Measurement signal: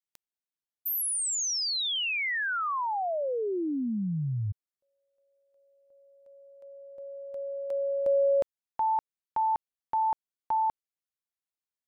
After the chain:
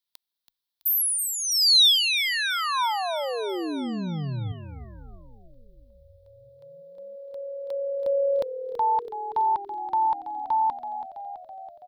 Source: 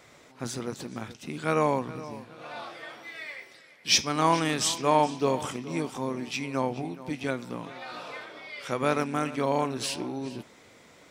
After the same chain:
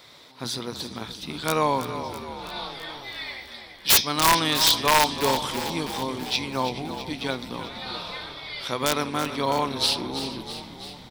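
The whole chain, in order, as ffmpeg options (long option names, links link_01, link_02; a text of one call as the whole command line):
ffmpeg -i in.wav -filter_complex "[0:a]highshelf=frequency=5000:width_type=q:width=3:gain=-13,aexciter=amount=10:drive=2.6:freq=4200,equalizer=frequency=970:width=4.3:gain=6,aeval=exprs='(mod(2.99*val(0)+1,2)-1)/2.99':channel_layout=same,asplit=9[link_01][link_02][link_03][link_04][link_05][link_06][link_07][link_08][link_09];[link_02]adelay=329,afreqshift=-39,volume=-11dB[link_10];[link_03]adelay=658,afreqshift=-78,volume=-14.9dB[link_11];[link_04]adelay=987,afreqshift=-117,volume=-18.8dB[link_12];[link_05]adelay=1316,afreqshift=-156,volume=-22.6dB[link_13];[link_06]adelay=1645,afreqshift=-195,volume=-26.5dB[link_14];[link_07]adelay=1974,afreqshift=-234,volume=-30.4dB[link_15];[link_08]adelay=2303,afreqshift=-273,volume=-34.3dB[link_16];[link_09]adelay=2632,afreqshift=-312,volume=-38.1dB[link_17];[link_01][link_10][link_11][link_12][link_13][link_14][link_15][link_16][link_17]amix=inputs=9:normalize=0" out.wav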